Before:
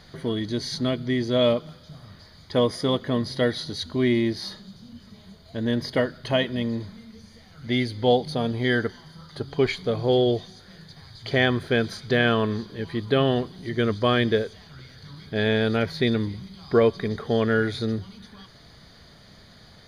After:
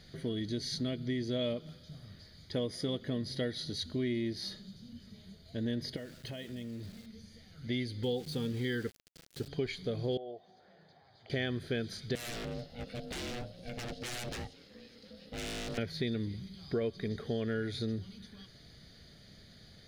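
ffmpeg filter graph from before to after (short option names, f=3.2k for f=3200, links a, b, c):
-filter_complex "[0:a]asettb=1/sr,asplit=3[a][b][c];[a]atrim=end=5.964[d];[b]atrim=start=5.96:end=7.06,asetpts=PTS-STARTPTS,afade=t=in:d=0.004:c=qsin,afade=t=out:st=1.096:d=0.004:c=qsin,acompressor=threshold=-33dB:ratio=6:attack=3.2:release=140:knee=1:detection=peak,aeval=exprs='val(0)*gte(abs(val(0)),0.00501)':c=same[e];[c]atrim=start=7.056[f];[d][e]acrossfade=d=0.004:c1=hsin:c2=qsin[g];[g][f]acrossfade=d=0.004:c1=qsin:c2=hsin,asettb=1/sr,asplit=3[h][i][j];[h]atrim=end=8.034[k];[i]atrim=start=8.03:end=9.48,asetpts=PTS-STARTPTS,afade=t=in:d=0.004:c=qsin,afade=t=out:st=1.446:d=0.004:c=qsin,asuperstop=centerf=650:order=20:qfactor=3.7,aeval=exprs='val(0)*gte(abs(val(0)),0.0133)':c=same[l];[j]atrim=start=9.476[m];[k][l]acrossfade=d=0.004:c1=hsin:c2=qsin[n];[n][m]acrossfade=d=0.004:c1=qsin:c2=hsin,asettb=1/sr,asplit=3[o][p][q];[o]atrim=end=10.174[r];[p]atrim=start=10.17:end=11.3,asetpts=PTS-STARTPTS,afade=t=in:d=0.004:c=qsin,afade=t=out:st=1.126:d=0.004:c=qsin,bandpass=f=770:t=q:w=3.9,acompressor=mode=upward:threshold=-40dB:ratio=2.5:attack=3.2:release=140:knee=2.83:detection=peak[s];[q]atrim=start=11.296[t];[r][s]acrossfade=d=0.004:c1=hsin:c2=qsin[u];[u][t]acrossfade=d=0.004:c1=qsin:c2=hsin,asettb=1/sr,asplit=3[v][w][x];[v]atrim=end=12.154[y];[w]atrim=start=12.15:end=15.78,asetpts=PTS-STARTPTS,afade=t=in:d=0.004:c=qsin,afade=t=out:st=3.626:d=0.004:c=qsin,bandreject=f=50:t=h:w=6,bandreject=f=100:t=h:w=6,bandreject=f=150:t=h:w=6,bandreject=f=200:t=h:w=6,bandreject=f=250:t=h:w=6,bandreject=f=300:t=h:w=6,bandreject=f=350:t=h:w=6,aeval=exprs='0.0596*(abs(mod(val(0)/0.0596+3,4)-2)-1)':c=same,aeval=exprs='val(0)*sin(2*PI*360*n/s)':c=same[z];[x]atrim=start=15.776[aa];[y][z]acrossfade=d=0.004:c1=hsin:c2=qsin[ab];[ab][aa]acrossfade=d=0.004:c1=qsin:c2=hsin,equalizer=f=1k:t=o:w=0.91:g=-13,acompressor=threshold=-27dB:ratio=3,volume=-5dB"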